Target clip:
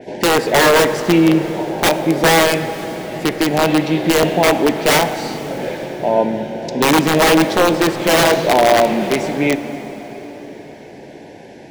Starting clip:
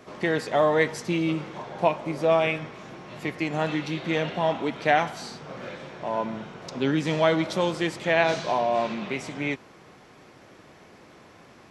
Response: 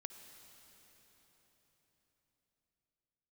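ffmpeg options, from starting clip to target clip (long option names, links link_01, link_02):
-filter_complex "[0:a]asuperstop=centerf=1200:order=8:qfactor=2.1,aeval=exprs='(mod(7.5*val(0)+1,2)-1)/7.5':channel_layout=same,asplit=2[link_01][link_02];[link_02]equalizer=frequency=440:width=0.41:gain=11.5[link_03];[1:a]atrim=start_sample=2205[link_04];[link_03][link_04]afir=irnorm=-1:irlink=0,volume=4.5dB[link_05];[link_01][link_05]amix=inputs=2:normalize=0,adynamicequalizer=threshold=0.0282:dfrequency=4600:dqfactor=0.7:tfrequency=4600:tqfactor=0.7:attack=5:release=100:ratio=0.375:range=2:mode=cutabove:tftype=highshelf,volume=2dB"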